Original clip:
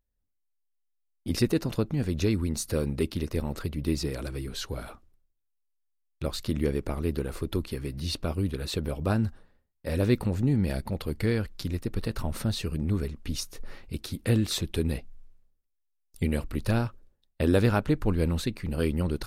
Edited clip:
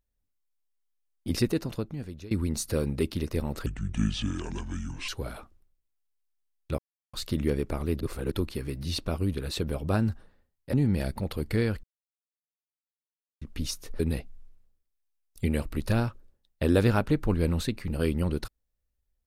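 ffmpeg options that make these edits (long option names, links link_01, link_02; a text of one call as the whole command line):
ffmpeg -i in.wav -filter_complex "[0:a]asplit=11[link_01][link_02][link_03][link_04][link_05][link_06][link_07][link_08][link_09][link_10][link_11];[link_01]atrim=end=2.31,asetpts=PTS-STARTPTS,afade=type=out:start_time=1.31:duration=1:silence=0.0841395[link_12];[link_02]atrim=start=2.31:end=3.664,asetpts=PTS-STARTPTS,afade=type=in:duration=0.004:curve=hsin:silence=0.0841395[link_13];[link_03]atrim=start=3.66:end=4.6,asetpts=PTS-STARTPTS,asetrate=29106,aresample=44100,atrim=end_sample=62809,asetpts=PTS-STARTPTS[link_14];[link_04]atrim=start=4.596:end=6.3,asetpts=PTS-STARTPTS,afade=type=out:start_time=1.7:duration=0.004:curve=hsin,apad=pad_dur=0.35[link_15];[link_05]atrim=start=6.3:end=7.172,asetpts=PTS-STARTPTS,afade=type=in:duration=0.004:curve=hsin[link_16];[link_06]atrim=start=7.168:end=7.482,asetpts=PTS-STARTPTS,areverse[link_17];[link_07]atrim=start=7.478:end=9.902[link_18];[link_08]atrim=start=10.428:end=11.53,asetpts=PTS-STARTPTS,afade=type=out:start_time=1.098:duration=0.004:curve=hsin[link_19];[link_09]atrim=start=11.53:end=13.11,asetpts=PTS-STARTPTS,volume=0[link_20];[link_10]atrim=start=13.11:end=13.692,asetpts=PTS-STARTPTS,afade=type=in:duration=0.004:curve=hsin[link_21];[link_11]atrim=start=14.778[link_22];[link_12][link_13]concat=n=2:v=0:a=1[link_23];[link_23][link_14]acrossfade=duration=0.004:curve1=hsin:curve2=hsin[link_24];[link_15][link_16]concat=n=2:v=0:a=1[link_25];[link_24][link_25]acrossfade=duration=0.004:curve1=hsin:curve2=hsin[link_26];[link_26][link_17]acrossfade=duration=0.004:curve1=hsin:curve2=hsin[link_27];[link_27][link_18]acrossfade=duration=0.004:curve1=hsin:curve2=hsin[link_28];[link_19][link_20][link_21]concat=n=3:v=0:a=1[link_29];[link_28][link_29]acrossfade=duration=0.004:curve1=hsin:curve2=hsin[link_30];[link_30][link_22]acrossfade=duration=0.004:curve1=hsin:curve2=hsin" out.wav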